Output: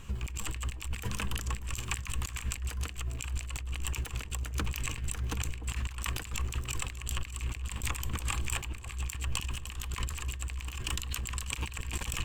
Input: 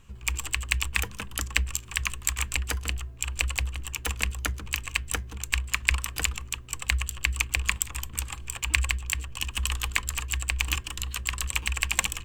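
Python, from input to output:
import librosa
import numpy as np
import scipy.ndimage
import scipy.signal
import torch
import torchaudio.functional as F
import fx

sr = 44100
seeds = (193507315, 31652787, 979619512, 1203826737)

y = fx.over_compress(x, sr, threshold_db=-38.0, ratio=-1.0)
y = fx.echo_alternate(y, sr, ms=297, hz=850.0, feedback_pct=54, wet_db=-9.5)
y = y * 10.0 ** (1.5 / 20.0)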